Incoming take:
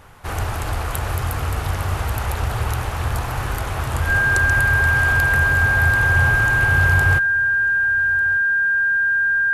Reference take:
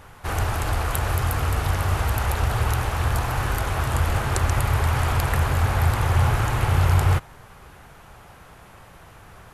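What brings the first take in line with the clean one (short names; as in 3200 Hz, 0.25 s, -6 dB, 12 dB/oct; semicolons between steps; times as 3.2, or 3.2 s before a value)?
notch 1600 Hz, Q 30; inverse comb 1.197 s -21.5 dB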